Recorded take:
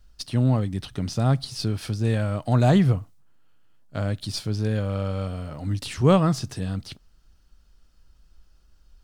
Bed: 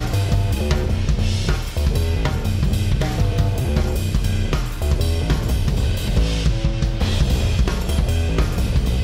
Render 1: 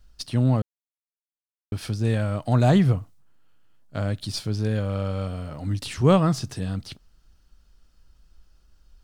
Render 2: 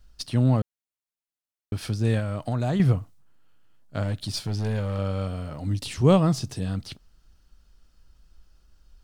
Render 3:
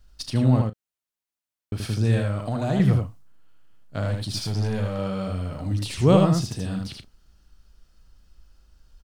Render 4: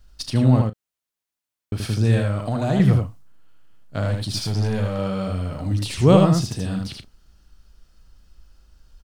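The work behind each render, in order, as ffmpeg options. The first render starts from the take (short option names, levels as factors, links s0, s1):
-filter_complex "[0:a]asplit=3[s0][s1][s2];[s0]atrim=end=0.62,asetpts=PTS-STARTPTS,afade=t=out:st=0.616:d=0.004:c=hsin[s3];[s1]atrim=start=0.62:end=1.72,asetpts=PTS-STARTPTS,volume=0[s4];[s2]atrim=start=1.72,asetpts=PTS-STARTPTS,afade=t=in:d=0.004:c=hsin[s5];[s3][s4][s5]concat=n=3:v=0:a=1"
-filter_complex "[0:a]asettb=1/sr,asplit=3[s0][s1][s2];[s0]atrim=end=2.194[s3];[s1]atrim=start=2.19:end=2.8,asetpts=PTS-STARTPTS,afade=t=in:d=0.004:c=qsin,afade=t=out:st=0.606:d=0.004:c=qsin,acompressor=threshold=0.0631:ratio=3:attack=3.2:release=140:knee=1:detection=peak[s4];[s2]atrim=start=2.796[s5];[s3][s4]acrossfade=d=0.004:c1=hsin:c2=qsin[s6];[s6][s5]acrossfade=d=0.004:c1=qsin:c2=hsin,asettb=1/sr,asplit=3[s7][s8][s9];[s7]atrim=end=4.034[s10];[s8]atrim=start=4.03:end=4.99,asetpts=PTS-STARTPTS,afade=t=in:d=0.004:c=qsin,afade=t=out:st=0.956:d=0.004:c=qsin,asoftclip=type=hard:threshold=0.0794[s11];[s9]atrim=start=4.986[s12];[s10][s11]acrossfade=d=0.004:c1=hsin:c2=qsin[s13];[s13][s12]acrossfade=d=0.004:c1=qsin:c2=hsin,asettb=1/sr,asplit=3[s14][s15][s16];[s14]atrim=end=5.604[s17];[s15]atrim=start=5.6:end=6.65,asetpts=PTS-STARTPTS,afade=t=in:d=0.004:c=qsin,afade=t=out:st=1.046:d=0.004:c=qsin,equalizer=f=1500:w=1.5:g=-5.5[s18];[s16]atrim=start=6.646[s19];[s17][s18]acrossfade=d=0.004:c1=hsin:c2=qsin[s20];[s20][s19]acrossfade=d=0.004:c1=qsin:c2=hsin"
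-filter_complex "[0:a]asplit=2[s0][s1];[s1]adelay=36,volume=0.211[s2];[s0][s2]amix=inputs=2:normalize=0,aecho=1:1:78:0.668"
-af "volume=1.41"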